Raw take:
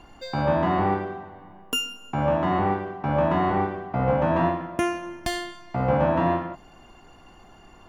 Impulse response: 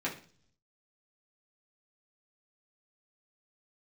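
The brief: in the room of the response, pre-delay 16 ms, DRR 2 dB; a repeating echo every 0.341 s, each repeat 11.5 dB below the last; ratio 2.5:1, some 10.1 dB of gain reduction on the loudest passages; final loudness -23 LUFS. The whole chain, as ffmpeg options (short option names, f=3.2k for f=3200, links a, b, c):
-filter_complex "[0:a]acompressor=threshold=-33dB:ratio=2.5,aecho=1:1:341|682|1023:0.266|0.0718|0.0194,asplit=2[a][b];[1:a]atrim=start_sample=2205,adelay=16[c];[b][c]afir=irnorm=-1:irlink=0,volume=-8dB[d];[a][d]amix=inputs=2:normalize=0,volume=9dB"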